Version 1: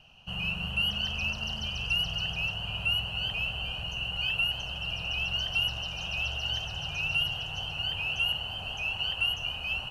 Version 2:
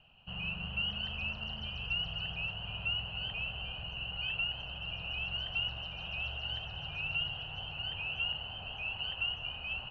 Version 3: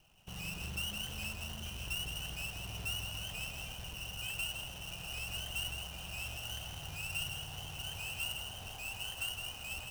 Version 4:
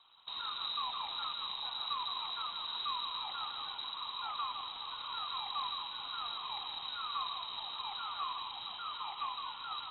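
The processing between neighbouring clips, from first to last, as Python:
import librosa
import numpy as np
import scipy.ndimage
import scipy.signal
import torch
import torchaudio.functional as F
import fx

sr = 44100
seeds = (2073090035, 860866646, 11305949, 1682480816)

y1 = scipy.signal.sosfilt(scipy.signal.butter(4, 3400.0, 'lowpass', fs=sr, output='sos'), x)
y1 = y1 * librosa.db_to_amplitude(-5.5)
y2 = fx.halfwave_hold(y1, sr)
y2 = y2 + 10.0 ** (-7.0 / 20.0) * np.pad(y2, (int(162 * sr / 1000.0), 0))[:len(y2)]
y2 = y2 * librosa.db_to_amplitude(-7.5)
y3 = fx.air_absorb(y2, sr, metres=91.0)
y3 = fx.freq_invert(y3, sr, carrier_hz=3900)
y3 = y3 * librosa.db_to_amplitude(2.5)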